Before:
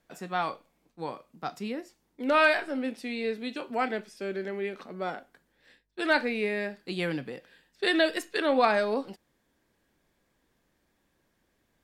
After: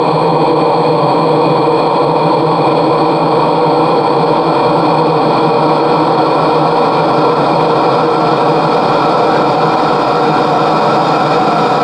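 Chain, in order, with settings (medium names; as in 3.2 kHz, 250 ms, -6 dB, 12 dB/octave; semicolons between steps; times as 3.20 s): Paulstretch 48×, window 1.00 s, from 1.03 s; low-pass 7.9 kHz 12 dB/octave; loudness maximiser +34 dB; trim -1 dB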